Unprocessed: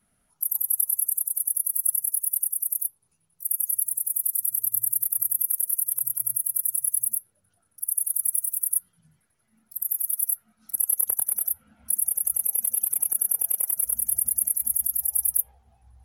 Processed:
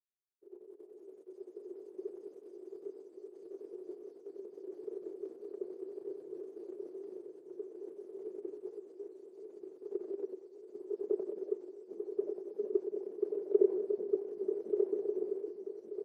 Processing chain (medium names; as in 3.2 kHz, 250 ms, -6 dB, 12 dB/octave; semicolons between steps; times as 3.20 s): random holes in the spectrogram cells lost 34%; comb 5 ms, depth 63%; waveshaping leveller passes 5; ever faster or slower copies 107 ms, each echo -5 st, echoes 3, each echo -6 dB; Butterworth band-pass 390 Hz, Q 5.2; feedback delay 1184 ms, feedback 46%, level -4 dB; three bands expanded up and down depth 70%; trim +11 dB